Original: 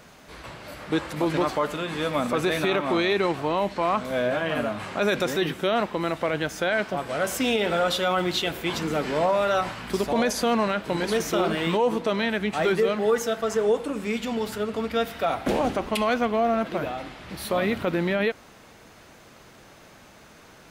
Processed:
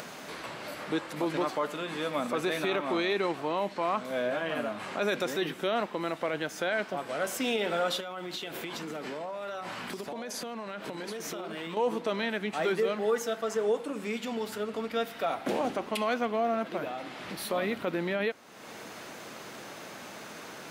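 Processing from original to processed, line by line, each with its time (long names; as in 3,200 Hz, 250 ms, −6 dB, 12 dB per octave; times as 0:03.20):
0:08.00–0:11.77: downward compressor 12 to 1, threshold −30 dBFS
whole clip: high-pass filter 190 Hz 12 dB per octave; upward compression, threshold −26 dBFS; level −5.5 dB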